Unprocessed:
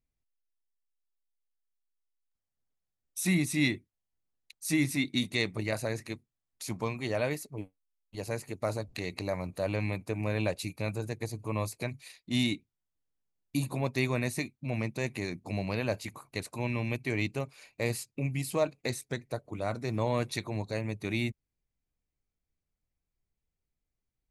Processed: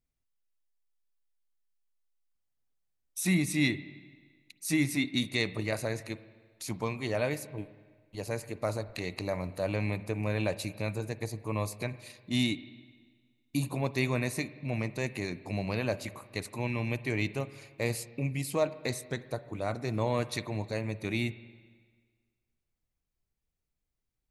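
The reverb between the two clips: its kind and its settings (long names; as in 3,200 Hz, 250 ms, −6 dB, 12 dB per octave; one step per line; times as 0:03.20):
spring reverb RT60 1.6 s, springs 43/48/55 ms, chirp 30 ms, DRR 15 dB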